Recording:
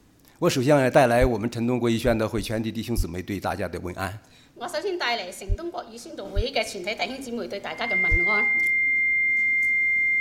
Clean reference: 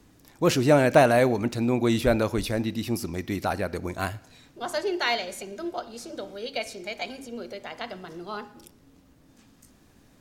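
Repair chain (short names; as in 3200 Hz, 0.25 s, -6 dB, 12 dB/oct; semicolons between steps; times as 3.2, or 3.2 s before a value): notch 2100 Hz, Q 30; de-plosive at 1.2/2.96/5.48/6.35/8.1; gain 0 dB, from 6.25 s -6 dB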